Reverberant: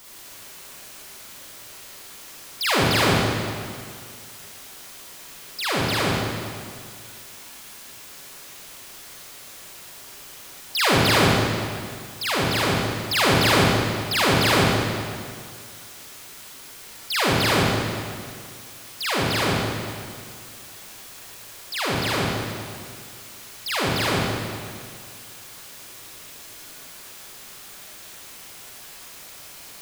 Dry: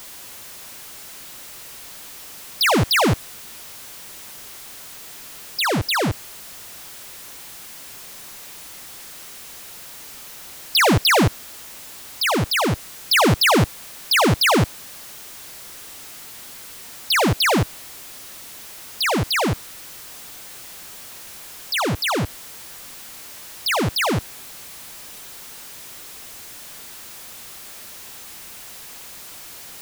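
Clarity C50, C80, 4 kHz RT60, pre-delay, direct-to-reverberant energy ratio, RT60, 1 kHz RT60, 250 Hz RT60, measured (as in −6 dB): −3.0 dB, −0.5 dB, 1.8 s, 37 ms, −6.5 dB, 2.1 s, 2.1 s, 2.1 s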